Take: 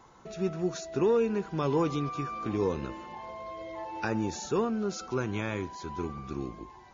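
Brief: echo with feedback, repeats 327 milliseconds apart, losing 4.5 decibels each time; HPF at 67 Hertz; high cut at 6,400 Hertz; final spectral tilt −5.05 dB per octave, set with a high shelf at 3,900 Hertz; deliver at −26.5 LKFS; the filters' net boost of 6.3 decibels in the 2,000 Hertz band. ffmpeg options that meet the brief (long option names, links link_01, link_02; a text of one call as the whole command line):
ffmpeg -i in.wav -af "highpass=67,lowpass=6400,equalizer=frequency=2000:width_type=o:gain=7.5,highshelf=frequency=3900:gain=4,aecho=1:1:327|654|981|1308|1635|1962|2289|2616|2943:0.596|0.357|0.214|0.129|0.0772|0.0463|0.0278|0.0167|0.01,volume=3dB" out.wav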